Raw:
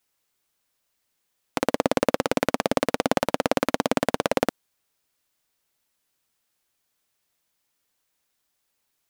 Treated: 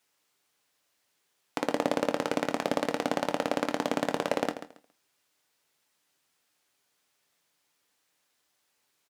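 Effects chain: high-pass 180 Hz 6 dB/octave; treble shelf 11 kHz -9.5 dB; peak limiter -14 dBFS, peak gain reduction 11 dB; feedback delay 138 ms, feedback 21%, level -12 dB; on a send at -9 dB: reverberation RT60 0.25 s, pre-delay 7 ms; on the sum: trim +3.5 dB

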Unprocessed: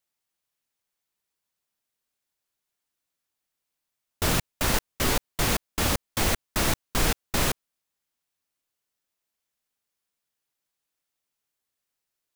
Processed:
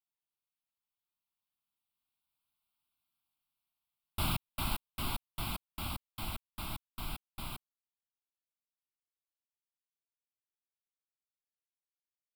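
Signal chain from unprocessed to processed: Doppler pass-by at 2.81 s, 9 m/s, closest 6.9 m; static phaser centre 1.8 kHz, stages 6

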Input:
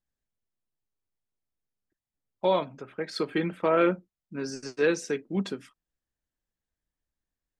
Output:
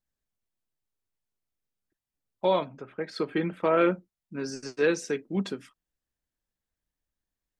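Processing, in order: 2.67–3.57 s: treble shelf 3.9 kHz -8 dB

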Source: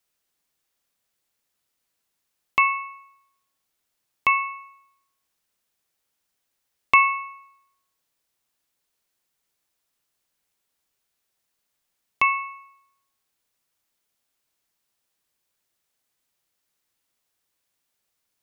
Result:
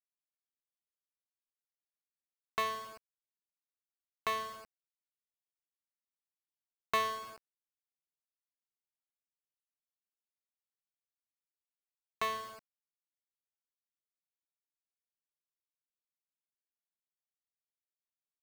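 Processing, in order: median filter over 25 samples; word length cut 8-bit, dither none; in parallel at -4 dB: hard clipper -29.5 dBFS, distortion -6 dB; on the sum: tape noise reduction on one side only encoder only; trim -8.5 dB

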